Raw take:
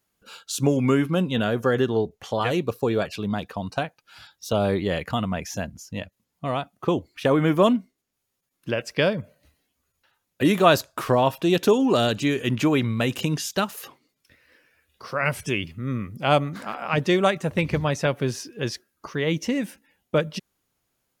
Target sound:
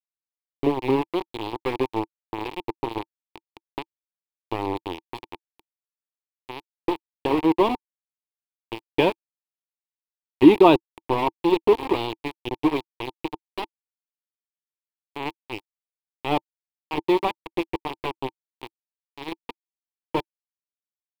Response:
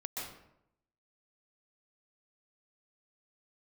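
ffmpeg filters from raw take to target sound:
-filter_complex "[0:a]asettb=1/sr,asplit=3[link_01][link_02][link_03];[link_01]atrim=end=8.864[link_04];[link_02]atrim=start=8.86:end=10.76,asetpts=PTS-STARTPTS,afade=type=in:duration=0.004:curve=qsin,afade=type=out:start_time=1.896:duration=0.004:curve=qsin,acontrast=32[link_05];[link_03]atrim=start=10.756[link_06];[link_04][link_05]acrossfade=duration=0.004:curve1=hsin:curve2=qsin[link_07];[link_07][link_06]acrossfade=duration=0.004:curve1=qsin:curve2=hsin,aeval=exprs='val(0)*gte(abs(val(0)),0.158)':channel_layout=same,firequalizer=gain_entry='entry(120,0);entry(190,-6);entry(330,12);entry(600,-5);entry(900,10);entry(1400,-14);entry(2400,1);entry(4300,-7);entry(6100,-20);entry(10000,-15)':delay=0.05:min_phase=1,volume=-4dB"

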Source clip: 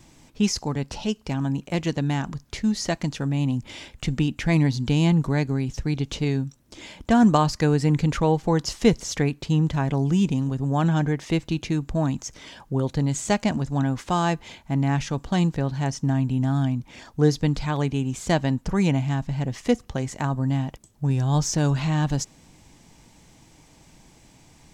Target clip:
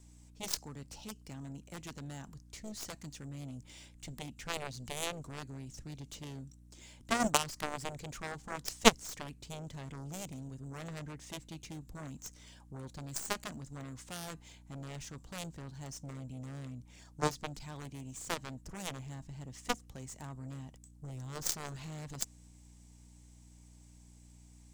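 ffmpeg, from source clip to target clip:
ffmpeg -i in.wav -filter_complex "[0:a]aeval=exprs='val(0)+0.0126*(sin(2*PI*60*n/s)+sin(2*PI*2*60*n/s)/2+sin(2*PI*3*60*n/s)/3+sin(2*PI*4*60*n/s)/4+sin(2*PI*5*60*n/s)/5)':channel_layout=same,equalizer=frequency=8500:width=0.86:gain=14,aeval=exprs='0.708*(cos(1*acos(clip(val(0)/0.708,-1,1)))-cos(1*PI/2))+0.282*(cos(3*acos(clip(val(0)/0.708,-1,1)))-cos(3*PI/2))+0.0112*(cos(4*acos(clip(val(0)/0.708,-1,1)))-cos(4*PI/2))+0.02*(cos(5*acos(clip(val(0)/0.708,-1,1)))-cos(5*PI/2))+0.00501*(cos(7*acos(clip(val(0)/0.708,-1,1)))-cos(7*PI/2))':channel_layout=same,acrossover=split=460|4000[link_01][link_02][link_03];[link_03]acrusher=bits=3:mode=log:mix=0:aa=0.000001[link_04];[link_01][link_02][link_04]amix=inputs=3:normalize=0,volume=1.5dB" out.wav

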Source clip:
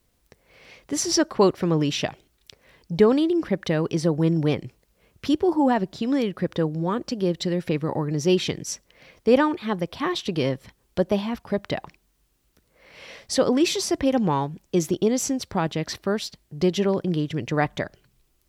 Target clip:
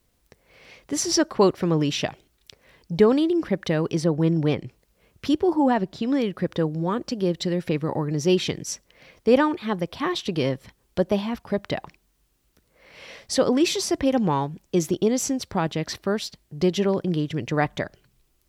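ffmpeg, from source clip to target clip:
ffmpeg -i in.wav -filter_complex "[0:a]asettb=1/sr,asplit=3[link_01][link_02][link_03];[link_01]atrim=end=4.044[link_04];[link_02]atrim=start=4.04:end=6.24,asetpts=PTS-STARTPTS,afade=type=in:duration=0.004:curve=qsin,afade=type=out:start_time=2.196:duration=0.004:curve=qsin,adynamicequalizer=threshold=0.00398:dfrequency=5100:dqfactor=0.7:tfrequency=5100:tqfactor=0.7:attack=5:release=100:ratio=0.375:range=2.5:mode=cutabove:tftype=highshelf[link_05];[link_03]atrim=start=6.236[link_06];[link_04][link_05]acrossfade=duration=0.004:curve1=hsin:curve2=qsin[link_07];[link_07][link_06]acrossfade=duration=0.004:curve1=qsin:curve2=hsin" out.wav

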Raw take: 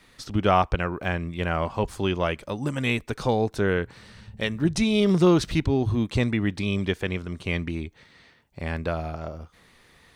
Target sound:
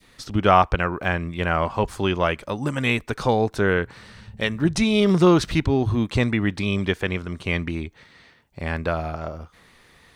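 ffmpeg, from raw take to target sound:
ffmpeg -i in.wav -af "adynamicequalizer=threshold=0.01:dfrequency=1300:dqfactor=0.78:tfrequency=1300:tqfactor=0.78:attack=5:release=100:ratio=0.375:range=2:mode=boostabove:tftype=bell,volume=2dB" out.wav

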